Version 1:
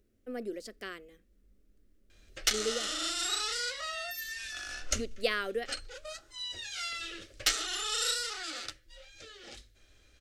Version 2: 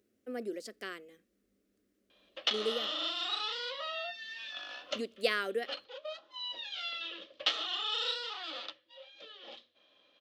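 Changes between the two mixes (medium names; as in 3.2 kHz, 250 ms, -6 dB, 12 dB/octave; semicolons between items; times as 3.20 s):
background: add cabinet simulation 250–3700 Hz, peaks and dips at 390 Hz -9 dB, 560 Hz +6 dB, 1 kHz +10 dB, 1.5 kHz -8 dB, 2.1 kHz -7 dB, 3.3 kHz +7 dB; master: add high-pass 180 Hz 12 dB/octave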